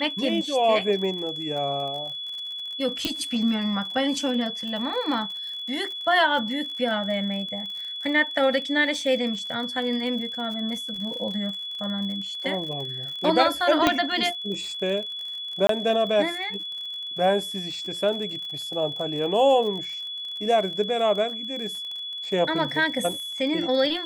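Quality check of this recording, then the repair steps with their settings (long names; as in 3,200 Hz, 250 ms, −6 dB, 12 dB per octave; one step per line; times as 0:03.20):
surface crackle 53 per second −33 dBFS
whistle 3,400 Hz −31 dBFS
0:03.05: click −10 dBFS
0:13.87: click −5 dBFS
0:15.67–0:15.69: drop-out 23 ms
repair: click removal
notch filter 3,400 Hz, Q 30
repair the gap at 0:15.67, 23 ms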